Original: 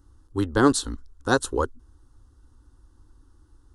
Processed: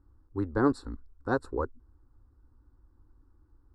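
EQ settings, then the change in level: running mean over 14 samples; -6.0 dB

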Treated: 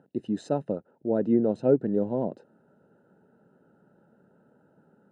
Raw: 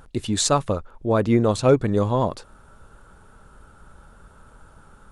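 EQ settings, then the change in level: running mean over 39 samples; HPF 170 Hz 24 dB/oct; -2.0 dB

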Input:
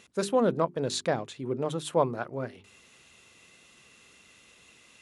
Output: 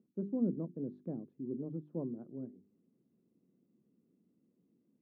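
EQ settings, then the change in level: Butterworth band-pass 230 Hz, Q 1.4; -3.0 dB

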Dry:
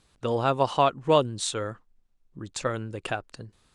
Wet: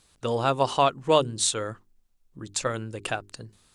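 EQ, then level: high shelf 4700 Hz +9.5 dB; notches 50/100/150/200/250/300/350/400 Hz; 0.0 dB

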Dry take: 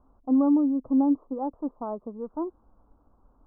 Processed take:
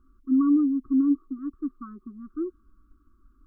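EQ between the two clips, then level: brick-wall FIR band-stop 390–1100 Hz; bell 140 Hz -12.5 dB 1.2 oct; +4.0 dB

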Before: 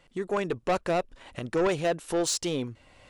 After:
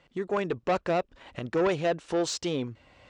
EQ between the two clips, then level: running mean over 4 samples; HPF 43 Hz; 0.0 dB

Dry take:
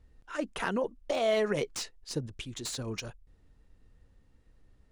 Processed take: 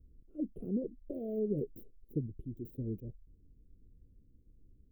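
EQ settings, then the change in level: inverse Chebyshev band-stop 890–8700 Hz, stop band 50 dB; bell 620 Hz +3 dB 1.7 oct; 0.0 dB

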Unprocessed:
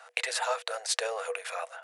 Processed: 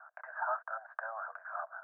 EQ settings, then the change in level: Chebyshev band-pass 590–1600 Hz, order 5; tilt +5.5 dB/oct; -2.5 dB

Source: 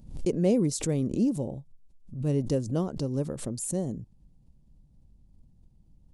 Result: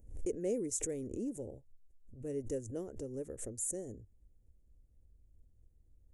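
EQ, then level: EQ curve 100 Hz 0 dB, 150 Hz -18 dB, 450 Hz +3 dB, 1100 Hz -15 dB, 1800 Hz -2 dB, 4500 Hz -22 dB, 6700 Hz 0 dB; dynamic EQ 5600 Hz, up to +5 dB, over -50 dBFS, Q 0.84; dynamic EQ 610 Hz, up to -5 dB, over -38 dBFS, Q 1; -5.5 dB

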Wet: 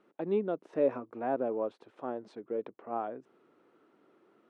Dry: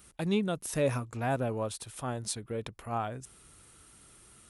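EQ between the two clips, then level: HPF 320 Hz 24 dB/oct; tape spacing loss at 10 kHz 34 dB; tilt -4 dB/oct; 0.0 dB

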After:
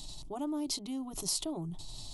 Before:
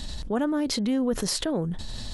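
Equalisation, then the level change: high shelf 5800 Hz +8.5 dB; fixed phaser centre 330 Hz, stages 8; -8.0 dB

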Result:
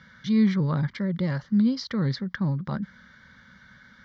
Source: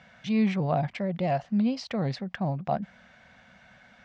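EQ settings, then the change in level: fixed phaser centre 2600 Hz, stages 6; +5.0 dB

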